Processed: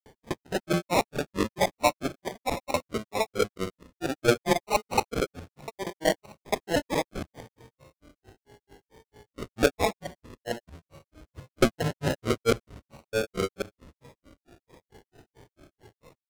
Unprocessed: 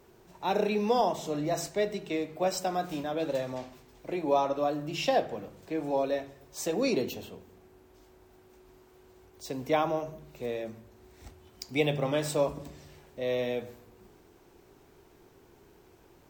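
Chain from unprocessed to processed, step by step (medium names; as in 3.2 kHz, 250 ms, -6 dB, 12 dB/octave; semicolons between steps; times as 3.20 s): time reversed locally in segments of 93 ms; peaking EQ 100 Hz +8.5 dB 0.24 oct; sample-and-hold 39×; granulator 159 ms, grains 4.5 per s, pitch spread up and down by 7 st; loudspeaker Doppler distortion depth 0.13 ms; trim +7 dB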